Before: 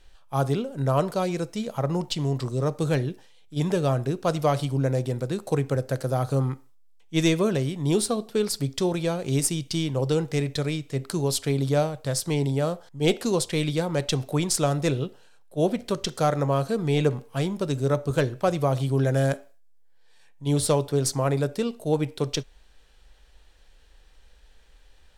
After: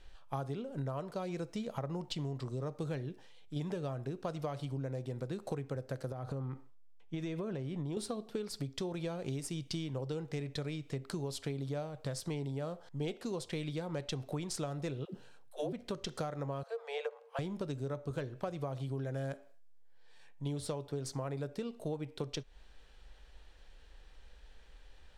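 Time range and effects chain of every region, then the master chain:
6.12–7.97 high shelf 3700 Hz -10 dB + compressor, threshold -29 dBFS
15.05–15.73 high shelf 9700 Hz +4 dB + dispersion lows, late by 97 ms, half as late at 320 Hz
16.63–17.39 Chebyshev high-pass 450 Hz, order 8 + high shelf 3700 Hz -10 dB
whole clip: high shelf 7100 Hz -11 dB; compressor 10:1, threshold -34 dBFS; gain -1 dB

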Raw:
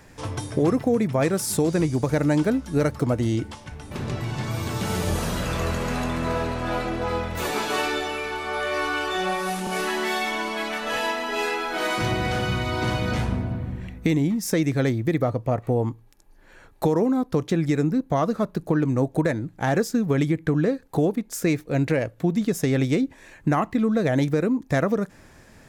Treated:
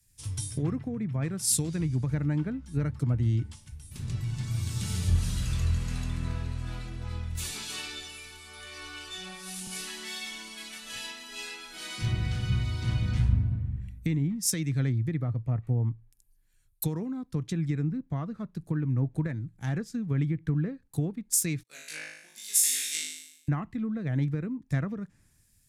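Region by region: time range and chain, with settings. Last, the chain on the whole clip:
21.63–23.48 gate -40 dBFS, range -16 dB + HPF 1000 Hz + flutter echo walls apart 3.3 m, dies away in 1.1 s
whole clip: treble ducked by the level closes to 2600 Hz, closed at -17.5 dBFS; EQ curve 120 Hz 0 dB, 560 Hz -21 dB, 6300 Hz 0 dB, 9600 Hz +10 dB; three-band expander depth 70%

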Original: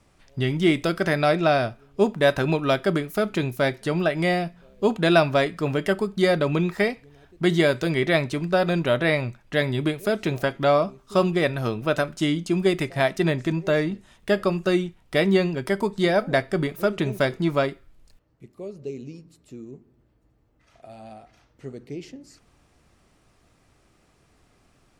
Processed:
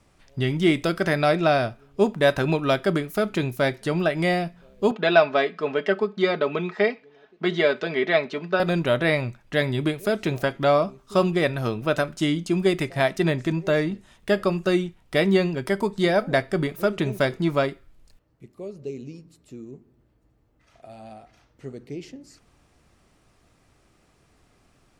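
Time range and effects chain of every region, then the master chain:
4.91–8.6 BPF 300–5100 Hz + air absorption 89 m + comb 4.7 ms, depth 58%
whole clip: dry

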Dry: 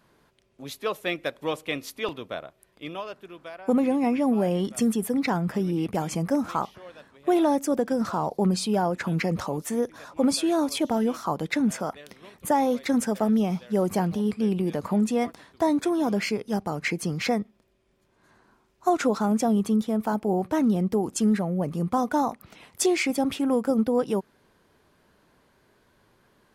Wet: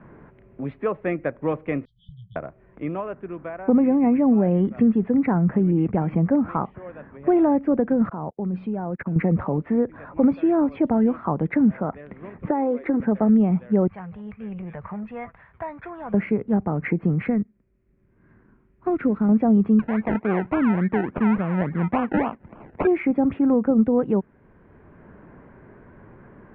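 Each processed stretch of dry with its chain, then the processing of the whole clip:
1.85–2.36 brick-wall FIR band-stop 170–3000 Hz + low shelf 340 Hz -9.5 dB + doubler 16 ms -11 dB
8.09–9.16 level quantiser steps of 17 dB + upward expander 2.5:1, over -56 dBFS
12.49–13 resonant low shelf 240 Hz -11 dB, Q 3 + compressor 2:1, threshold -26 dBFS
13.87–16.14 passive tone stack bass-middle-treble 10-0-10 + core saturation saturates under 1200 Hz
17.26–19.29 G.711 law mismatch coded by A + bell 800 Hz -11 dB 1.4 oct
19.79–22.87 decimation with a swept rate 31×, swing 60% 3.5 Hz + tilt +2 dB/oct
whole clip: steep low-pass 2200 Hz 36 dB/oct; low shelf 360 Hz +11.5 dB; three-band squash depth 40%; gain -1.5 dB

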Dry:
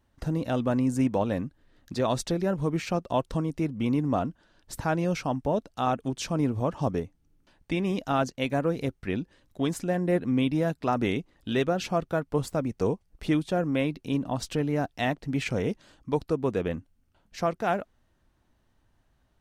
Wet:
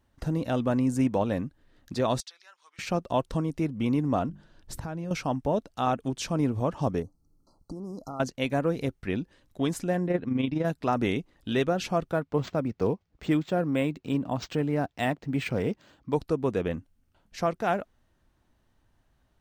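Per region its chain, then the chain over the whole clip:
2.2–2.79 Chebyshev band-pass 1100–4800 Hz + differentiator
4.29–5.11 low shelf 300 Hz +9.5 dB + notches 50/100/150/200/250/300/350/400 Hz + compressor 4:1, threshold -33 dBFS
7.02–8.2 compressor, threshold -34 dBFS + brick-wall FIR band-stop 1400–4000 Hz
10.07–10.65 LPF 4900 Hz + AM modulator 24 Hz, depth 40%
12.12–16.14 HPF 65 Hz + decimation joined by straight lines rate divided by 4×
whole clip: dry

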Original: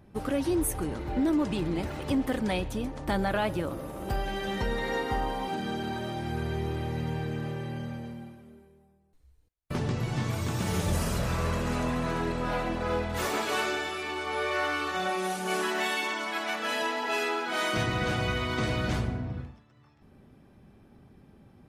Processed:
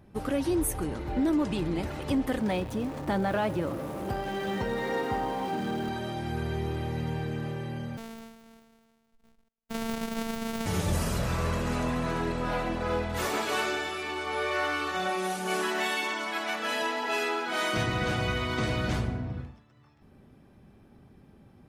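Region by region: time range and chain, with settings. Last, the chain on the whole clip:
2.4–5.89 zero-crossing step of -36 dBFS + HPF 92 Hz + high shelf 2100 Hz -7.5 dB
7.97–10.66 sample sorter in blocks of 256 samples + robotiser 226 Hz
whole clip: dry

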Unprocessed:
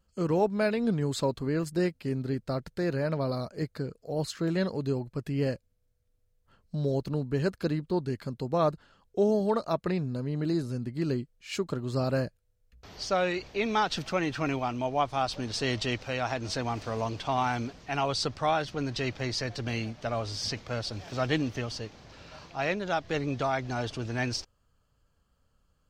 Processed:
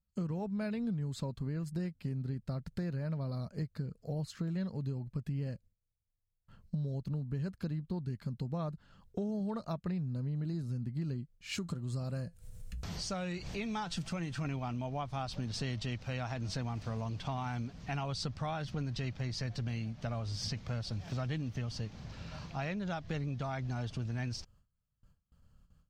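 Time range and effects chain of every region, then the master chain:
11.58–14.45 bell 8700 Hz +10.5 dB 0.85 oct + upward compressor, threshold -29 dBFS + resonator 170 Hz, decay 0.15 s, mix 50%
whole clip: gate with hold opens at -59 dBFS; resonant low shelf 250 Hz +8.5 dB, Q 1.5; compressor 6:1, threshold -33 dBFS; gain -1.5 dB

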